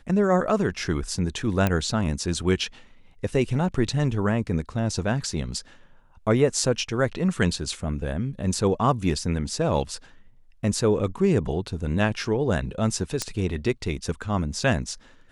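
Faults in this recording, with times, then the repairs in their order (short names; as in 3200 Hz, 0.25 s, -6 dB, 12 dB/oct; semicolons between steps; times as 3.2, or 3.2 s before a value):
1.67 pop -9 dBFS
13.22 pop -11 dBFS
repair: de-click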